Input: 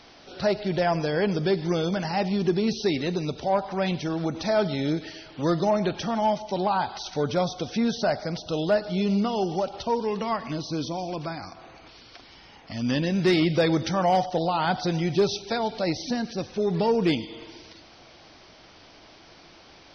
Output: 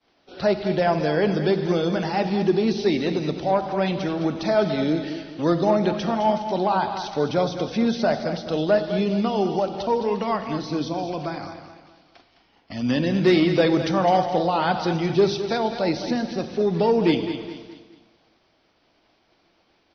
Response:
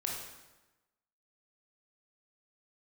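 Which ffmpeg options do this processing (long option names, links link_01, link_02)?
-filter_complex "[0:a]acrossover=split=220 5500:gain=0.224 1 0.251[link_01][link_02][link_03];[link_01][link_02][link_03]amix=inputs=3:normalize=0,agate=range=-33dB:threshold=-41dB:ratio=3:detection=peak,lowshelf=frequency=250:gain=7.5,aecho=1:1:210|420|630|840:0.316|0.123|0.0481|0.0188,asplit=2[link_04][link_05];[1:a]atrim=start_sample=2205,lowshelf=frequency=250:gain=11.5[link_06];[link_05][link_06]afir=irnorm=-1:irlink=0,volume=-12.5dB[link_07];[link_04][link_07]amix=inputs=2:normalize=0"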